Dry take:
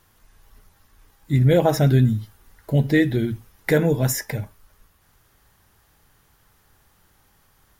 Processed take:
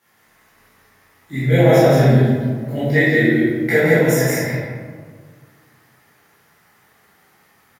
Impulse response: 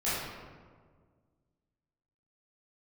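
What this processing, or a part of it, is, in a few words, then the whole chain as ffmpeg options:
stadium PA: -filter_complex "[0:a]highpass=200,equalizer=f=2000:t=o:w=0.42:g=7,aecho=1:1:169.1|201.2:0.708|0.282[s0];[1:a]atrim=start_sample=2205[s1];[s0][s1]afir=irnorm=-1:irlink=0,volume=0.562"

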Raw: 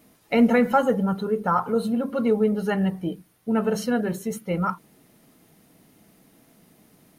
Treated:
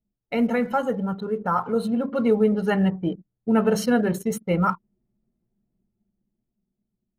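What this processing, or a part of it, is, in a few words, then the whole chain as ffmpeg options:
voice memo with heavy noise removal: -af "anlmdn=0.631,dynaudnorm=f=280:g=11:m=2.82,volume=0.596"

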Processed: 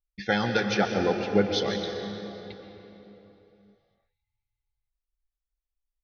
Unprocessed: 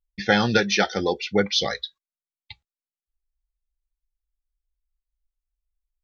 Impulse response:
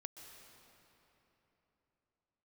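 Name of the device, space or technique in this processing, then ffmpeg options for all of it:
swimming-pool hall: -filter_complex "[0:a]asettb=1/sr,asplit=3[s0][s1][s2];[s0]atrim=end=0.744[s3];[s1]atrim=start=0.74:end=1.54,asetpts=PTS-STARTPTS,afade=t=in:d=0.004:c=qsin,afade=t=out:st=0.796:d=0.004:c=qsin,tiltshelf=f=1400:g=5.5[s4];[s2]atrim=start=1.536[s5];[s3][s4]acrossfade=d=0.004:c1=hsin:c2=qsin[s6];[s6][s5]acrossfade=d=0.004:c1=qsin:c2=hsin[s7];[1:a]atrim=start_sample=2205[s8];[s7][s8]afir=irnorm=-1:irlink=0,highshelf=f=5600:g=-6.5"

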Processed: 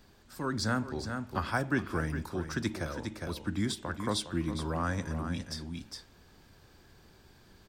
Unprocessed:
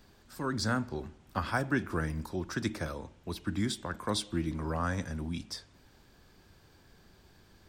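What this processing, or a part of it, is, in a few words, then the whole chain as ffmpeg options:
ducked delay: -filter_complex "[0:a]asplit=3[s0][s1][s2];[s1]adelay=409,volume=0.668[s3];[s2]apad=whole_len=356923[s4];[s3][s4]sidechaincompress=threshold=0.0126:ratio=4:attack=24:release=443[s5];[s0][s5]amix=inputs=2:normalize=0"

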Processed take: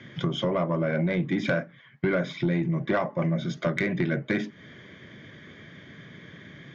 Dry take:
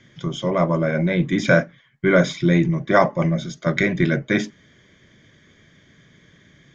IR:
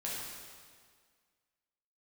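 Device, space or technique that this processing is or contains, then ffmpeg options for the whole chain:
AM radio: -af "highpass=100,lowpass=3300,acompressor=threshold=0.0316:ratio=6,asoftclip=type=tanh:threshold=0.075,volume=2.37"

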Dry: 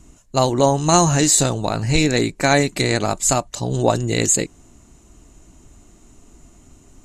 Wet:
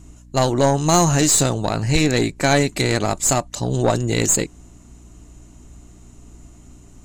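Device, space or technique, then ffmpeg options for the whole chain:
valve amplifier with mains hum: -af "aeval=exprs='(tanh(2.82*val(0)+0.35)-tanh(0.35))/2.82':c=same,aeval=exprs='val(0)+0.00501*(sin(2*PI*60*n/s)+sin(2*PI*2*60*n/s)/2+sin(2*PI*3*60*n/s)/3+sin(2*PI*4*60*n/s)/4+sin(2*PI*5*60*n/s)/5)':c=same,volume=1.19"

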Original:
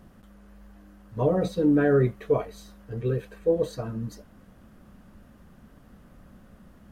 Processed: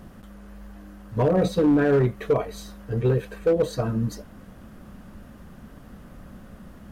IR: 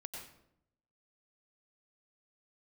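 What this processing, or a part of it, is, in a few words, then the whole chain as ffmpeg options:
limiter into clipper: -af "alimiter=limit=0.119:level=0:latency=1:release=192,asoftclip=type=hard:threshold=0.0841,volume=2.37"

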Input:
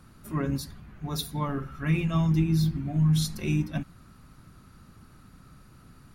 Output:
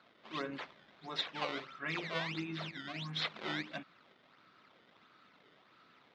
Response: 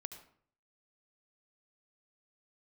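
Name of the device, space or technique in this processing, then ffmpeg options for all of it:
circuit-bent sampling toy: -af "acrusher=samples=15:mix=1:aa=0.000001:lfo=1:lforange=24:lforate=1.5,highpass=500,equalizer=f=820:t=q:w=4:g=-3,equalizer=f=2100:t=q:w=4:g=3,equalizer=f=3600:t=q:w=4:g=5,lowpass=f=4300:w=0.5412,lowpass=f=4300:w=1.3066,volume=0.708"

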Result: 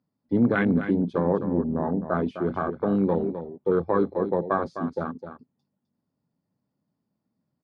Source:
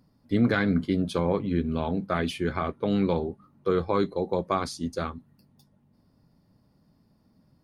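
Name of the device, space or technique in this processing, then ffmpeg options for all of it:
over-cleaned archive recording: -filter_complex "[0:a]asettb=1/sr,asplit=3[s0][s1][s2];[s0]atrim=end=1.314[s3];[s1]atrim=start=1.31:end=2.14,asetpts=PTS-STARTPTS,afade=t=in:d=0.004:c=qsin,afade=t=out:st=0.826:d=0.004:c=qsin,lowpass=f=1400:w=0.5412,lowpass=f=1400:w=1.3066[s4];[s2]atrim=start=2.136[s5];[s3][s4]acrossfade=d=0.004:c1=hsin:c2=qsin[s6];[s6][s5]acrossfade=d=0.004:c1=qsin:c2=hsin,highpass=130,lowpass=6300,afwtdn=0.0316,aemphasis=mode=reproduction:type=cd,aecho=1:1:257:0.316,volume=1.26"

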